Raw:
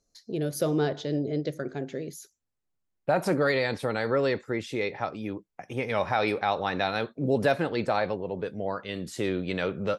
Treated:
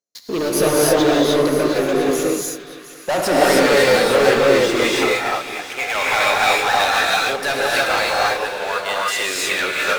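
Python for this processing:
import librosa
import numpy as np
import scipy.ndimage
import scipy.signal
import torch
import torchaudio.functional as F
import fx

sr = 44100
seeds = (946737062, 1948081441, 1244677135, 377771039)

y = fx.highpass(x, sr, hz=fx.steps((0.0, 290.0), (4.83, 1100.0)), slope=12)
y = fx.leveller(y, sr, passes=5)
y = fx.echo_split(y, sr, split_hz=1300.0, low_ms=225, high_ms=713, feedback_pct=52, wet_db=-13.5)
y = fx.rev_gated(y, sr, seeds[0], gate_ms=340, shape='rising', drr_db=-5.0)
y = F.gain(torch.from_numpy(y), -3.0).numpy()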